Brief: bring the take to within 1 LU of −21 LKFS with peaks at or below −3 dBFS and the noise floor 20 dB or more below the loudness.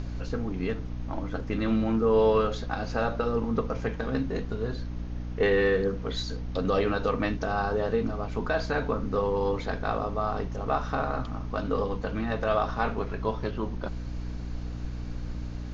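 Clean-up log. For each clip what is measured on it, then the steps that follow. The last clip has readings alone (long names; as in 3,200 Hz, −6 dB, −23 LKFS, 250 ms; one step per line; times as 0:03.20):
mains hum 60 Hz; hum harmonics up to 300 Hz; level of the hum −33 dBFS; background noise floor −35 dBFS; target noise floor −49 dBFS; integrated loudness −29.0 LKFS; sample peak −12.5 dBFS; target loudness −21.0 LKFS
→ mains-hum notches 60/120/180/240/300 Hz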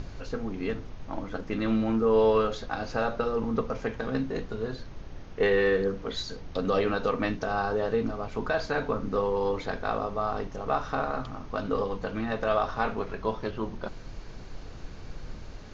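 mains hum none found; background noise floor −42 dBFS; target noise floor −50 dBFS
→ noise reduction from a noise print 8 dB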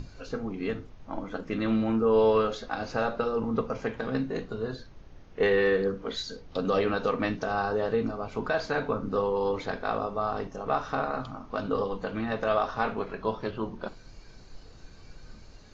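background noise floor −50 dBFS; integrated loudness −29.5 LKFS; sample peak −13.0 dBFS; target loudness −21.0 LKFS
→ level +8.5 dB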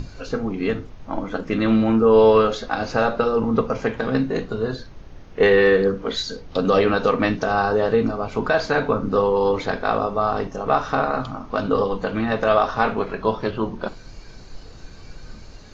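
integrated loudness −21.0 LKFS; sample peak −4.5 dBFS; background noise floor −41 dBFS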